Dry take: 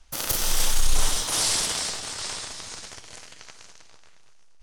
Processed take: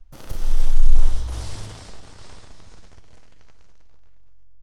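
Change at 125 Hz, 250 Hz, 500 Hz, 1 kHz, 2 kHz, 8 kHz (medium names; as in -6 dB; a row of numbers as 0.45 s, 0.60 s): +9.0 dB, -2.5 dB, -6.5 dB, -10.0 dB, -13.5 dB, -20.0 dB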